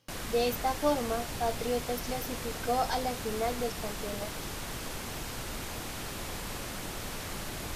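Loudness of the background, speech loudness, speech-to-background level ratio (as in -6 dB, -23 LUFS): -38.0 LUFS, -33.5 LUFS, 4.5 dB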